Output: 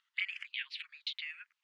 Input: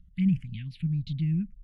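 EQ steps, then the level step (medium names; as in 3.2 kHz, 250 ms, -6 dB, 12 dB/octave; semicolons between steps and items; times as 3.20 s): dynamic bell 1.5 kHz, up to +4 dB, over -52 dBFS, Q 1.3; brick-wall FIR high-pass 840 Hz; distance through air 120 m; +13.5 dB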